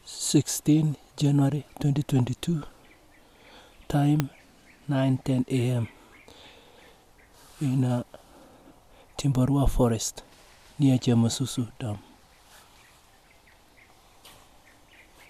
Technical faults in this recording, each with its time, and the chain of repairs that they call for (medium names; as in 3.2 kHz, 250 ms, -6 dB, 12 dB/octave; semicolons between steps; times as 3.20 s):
4.20 s: pop -9 dBFS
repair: de-click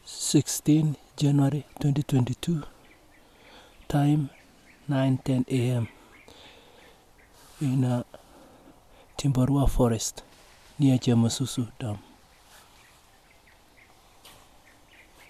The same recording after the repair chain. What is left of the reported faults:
4.20 s: pop